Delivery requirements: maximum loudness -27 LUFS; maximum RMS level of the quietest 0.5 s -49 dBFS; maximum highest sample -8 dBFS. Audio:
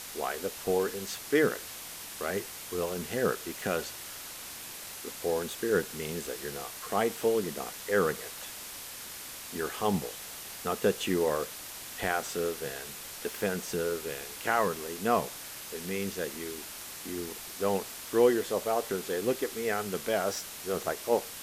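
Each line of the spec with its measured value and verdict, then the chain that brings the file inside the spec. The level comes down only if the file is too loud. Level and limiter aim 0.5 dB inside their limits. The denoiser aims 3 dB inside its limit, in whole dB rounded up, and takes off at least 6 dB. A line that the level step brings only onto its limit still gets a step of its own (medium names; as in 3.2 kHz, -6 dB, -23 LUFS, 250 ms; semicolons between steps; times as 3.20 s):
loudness -32.0 LUFS: pass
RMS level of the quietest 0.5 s -43 dBFS: fail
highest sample -12.0 dBFS: pass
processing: noise reduction 9 dB, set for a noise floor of -43 dBFS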